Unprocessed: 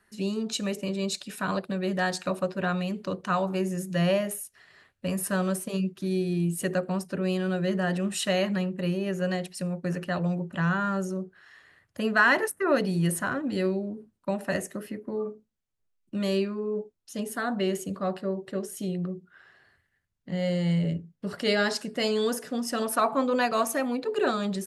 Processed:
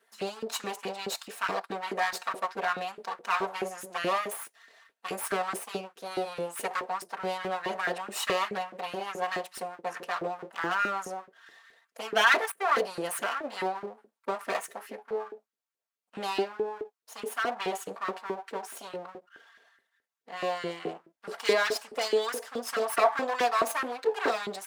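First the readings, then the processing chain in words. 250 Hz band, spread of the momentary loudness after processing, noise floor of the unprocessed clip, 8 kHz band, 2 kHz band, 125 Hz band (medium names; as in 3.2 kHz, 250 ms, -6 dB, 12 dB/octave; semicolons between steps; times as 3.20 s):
-14.0 dB, 14 LU, -75 dBFS, -3.0 dB, -1.0 dB, -20.5 dB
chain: comb filter that takes the minimum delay 4.4 ms; LFO high-pass saw up 4.7 Hz 360–1600 Hz; trim -1.5 dB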